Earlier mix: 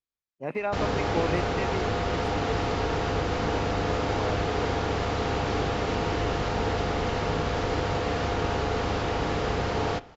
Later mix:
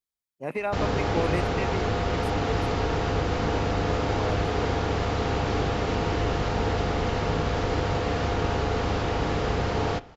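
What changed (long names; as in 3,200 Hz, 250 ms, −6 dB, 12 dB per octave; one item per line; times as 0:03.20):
speech: remove high-frequency loss of the air 100 metres
background: add low-shelf EQ 220 Hz +3.5 dB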